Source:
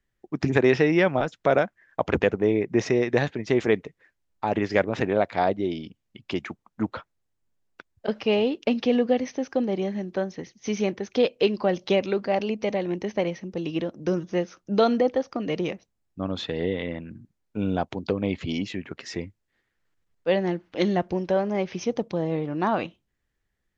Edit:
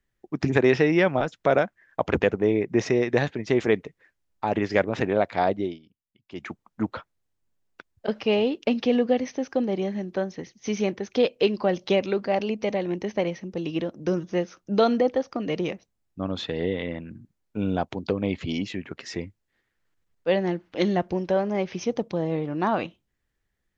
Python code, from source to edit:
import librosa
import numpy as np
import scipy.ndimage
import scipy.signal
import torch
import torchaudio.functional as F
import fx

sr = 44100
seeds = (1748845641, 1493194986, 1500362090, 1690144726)

y = fx.edit(x, sr, fx.fade_down_up(start_s=5.62, length_s=0.86, db=-18.0, fade_s=0.17), tone=tone)